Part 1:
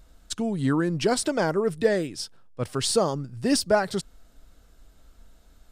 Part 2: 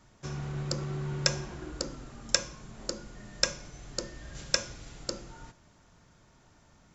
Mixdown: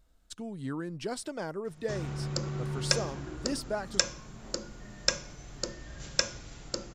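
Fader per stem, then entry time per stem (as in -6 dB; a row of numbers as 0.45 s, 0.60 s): -12.5 dB, 0.0 dB; 0.00 s, 1.65 s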